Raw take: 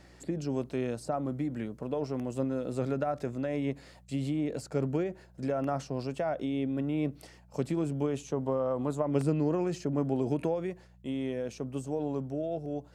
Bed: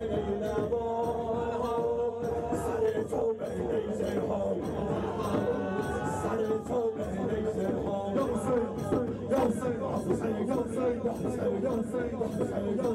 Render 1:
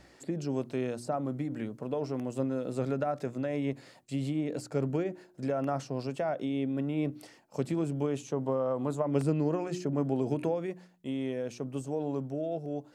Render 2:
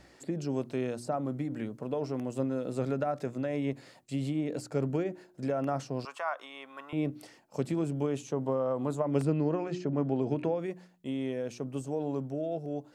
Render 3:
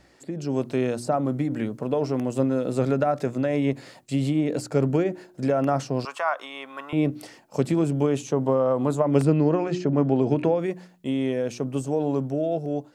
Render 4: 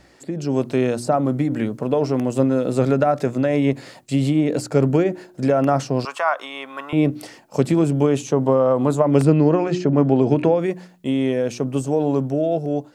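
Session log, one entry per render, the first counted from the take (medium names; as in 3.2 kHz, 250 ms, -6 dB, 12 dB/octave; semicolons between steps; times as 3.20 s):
de-hum 60 Hz, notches 6
6.05–6.93 s: resonant high-pass 1.1 kHz, resonance Q 5.4; 9.25–10.59 s: low-pass 4.5 kHz
level rider gain up to 8.5 dB
trim +5 dB; peak limiter -3 dBFS, peak gain reduction 2 dB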